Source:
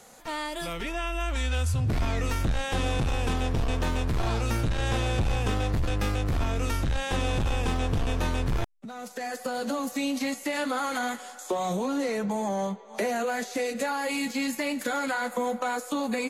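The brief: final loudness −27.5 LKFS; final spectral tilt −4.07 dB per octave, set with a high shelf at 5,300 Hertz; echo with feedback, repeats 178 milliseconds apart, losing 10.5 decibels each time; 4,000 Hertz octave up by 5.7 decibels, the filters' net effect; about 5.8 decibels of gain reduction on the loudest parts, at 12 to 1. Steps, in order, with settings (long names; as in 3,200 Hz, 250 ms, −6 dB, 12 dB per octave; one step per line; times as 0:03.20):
parametric band 4,000 Hz +5.5 dB
high-shelf EQ 5,300 Hz +4 dB
downward compressor 12 to 1, threshold −28 dBFS
repeating echo 178 ms, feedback 30%, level −10.5 dB
level +5 dB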